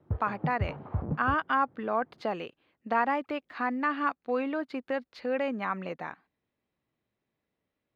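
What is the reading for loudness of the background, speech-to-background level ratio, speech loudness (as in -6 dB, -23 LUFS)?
-36.0 LUFS, 5.0 dB, -31.0 LUFS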